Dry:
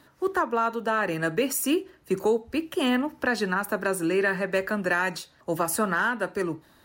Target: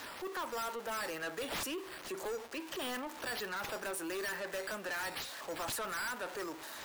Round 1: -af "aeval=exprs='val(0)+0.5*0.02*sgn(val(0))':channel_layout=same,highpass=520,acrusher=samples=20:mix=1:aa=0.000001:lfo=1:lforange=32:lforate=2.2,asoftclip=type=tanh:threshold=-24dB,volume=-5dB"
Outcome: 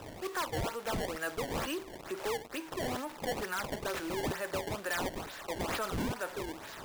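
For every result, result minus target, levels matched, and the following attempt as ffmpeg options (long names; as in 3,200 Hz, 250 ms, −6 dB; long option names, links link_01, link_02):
sample-and-hold swept by an LFO: distortion +13 dB; soft clipping: distortion −5 dB
-af "aeval=exprs='val(0)+0.5*0.02*sgn(val(0))':channel_layout=same,highpass=520,acrusher=samples=4:mix=1:aa=0.000001:lfo=1:lforange=6.4:lforate=2.2,asoftclip=type=tanh:threshold=-24dB,volume=-5dB"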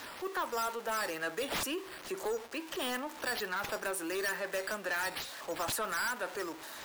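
soft clipping: distortion −5 dB
-af "aeval=exprs='val(0)+0.5*0.02*sgn(val(0))':channel_layout=same,highpass=520,acrusher=samples=4:mix=1:aa=0.000001:lfo=1:lforange=6.4:lforate=2.2,asoftclip=type=tanh:threshold=-30.5dB,volume=-5dB"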